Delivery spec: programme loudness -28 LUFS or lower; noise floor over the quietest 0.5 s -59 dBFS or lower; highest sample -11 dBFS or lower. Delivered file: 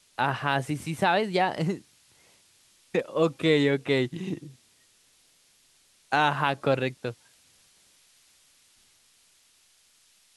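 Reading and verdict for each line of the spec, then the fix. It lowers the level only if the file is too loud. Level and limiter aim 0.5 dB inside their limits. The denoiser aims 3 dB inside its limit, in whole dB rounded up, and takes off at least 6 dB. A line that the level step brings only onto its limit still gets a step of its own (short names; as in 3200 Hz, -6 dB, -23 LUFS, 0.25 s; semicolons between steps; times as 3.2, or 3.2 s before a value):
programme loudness -26.5 LUFS: fail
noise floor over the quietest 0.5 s -63 dBFS: OK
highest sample -8.5 dBFS: fail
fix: gain -2 dB; limiter -11.5 dBFS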